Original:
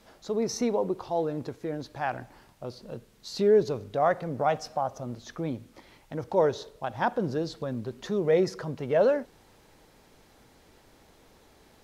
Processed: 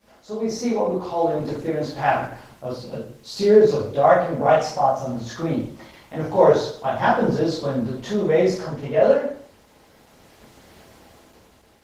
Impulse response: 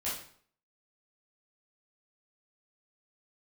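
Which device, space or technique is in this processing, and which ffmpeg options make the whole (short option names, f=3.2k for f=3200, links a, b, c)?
far-field microphone of a smart speaker: -filter_complex "[0:a]asettb=1/sr,asplit=3[a][b][c];[a]atrim=end=4.954[d];[b]atrim=start=4.95:end=7.04,asetpts=PTS-STARTPTS,afade=t=in:d=0.004:c=qsin,afade=t=out:st=2.086:d=0.004:c=qsin,asplit=2[e][f];[f]adelay=26,volume=-8.5dB[g];[e][g]amix=inputs=2:normalize=0,atrim=end_sample=92169[h];[c]atrim=start=7.036[i];[d][h]acrossfade=d=0.004:c1=hsin:c2=qsin[j];[j][i]acrossfade=d=0.004:c1=qsin:c2=hsin[k];[1:a]atrim=start_sample=2205[l];[k][l]afir=irnorm=-1:irlink=0,highpass=81,dynaudnorm=f=300:g=7:m=10dB,volume=-1dB" -ar 48000 -c:a libopus -b:a 16k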